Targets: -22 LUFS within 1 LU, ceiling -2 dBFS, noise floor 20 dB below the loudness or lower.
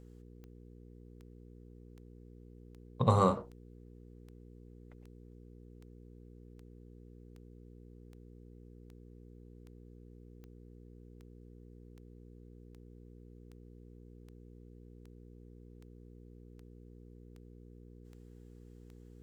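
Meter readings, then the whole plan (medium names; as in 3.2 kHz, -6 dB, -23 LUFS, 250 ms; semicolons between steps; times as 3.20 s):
clicks found 25; hum 60 Hz; highest harmonic 480 Hz; hum level -51 dBFS; loudness -30.0 LUFS; peak level -11.5 dBFS; loudness target -22.0 LUFS
-> de-click; de-hum 60 Hz, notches 8; trim +8 dB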